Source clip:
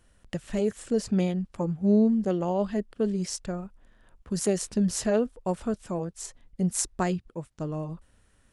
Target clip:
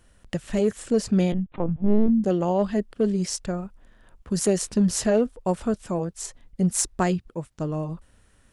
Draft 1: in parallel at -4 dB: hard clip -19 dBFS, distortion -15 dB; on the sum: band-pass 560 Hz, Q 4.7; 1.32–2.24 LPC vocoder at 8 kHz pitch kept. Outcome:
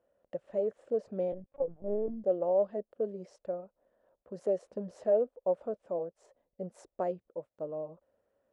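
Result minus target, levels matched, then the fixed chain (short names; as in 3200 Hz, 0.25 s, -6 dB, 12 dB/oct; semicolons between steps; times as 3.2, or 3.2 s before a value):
500 Hz band +5.0 dB
in parallel at -4 dB: hard clip -19 dBFS, distortion -15 dB; 1.32–2.24 on the sum: LPC vocoder at 8 kHz pitch kept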